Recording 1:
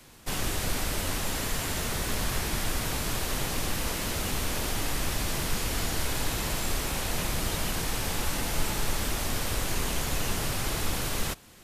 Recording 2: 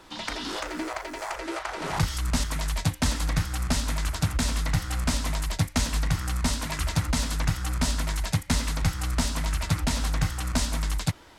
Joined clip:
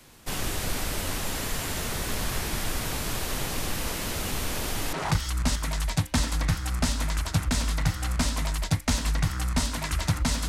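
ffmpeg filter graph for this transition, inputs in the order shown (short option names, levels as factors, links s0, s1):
-filter_complex "[0:a]apad=whole_dur=10.48,atrim=end=10.48,atrim=end=4.932[s0];[1:a]atrim=start=1.808:end=7.36[s1];[s0][s1]acrossfade=d=0.004:c1=hsin:c2=hsin"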